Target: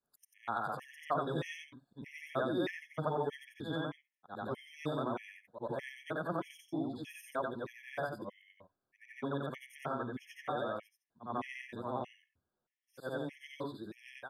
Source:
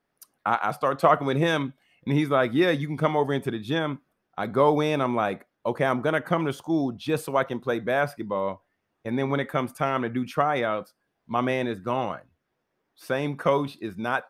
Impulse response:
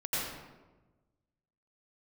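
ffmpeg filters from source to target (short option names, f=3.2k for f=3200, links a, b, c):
-af "afftfilt=real='re':imag='-im':win_size=8192:overlap=0.75,afftfilt=real='re*gt(sin(2*PI*1.6*pts/sr)*(1-2*mod(floor(b*sr/1024/1700),2)),0)':imag='im*gt(sin(2*PI*1.6*pts/sr)*(1-2*mod(floor(b*sr/1024/1700),2)),0)':win_size=1024:overlap=0.75,volume=-6.5dB"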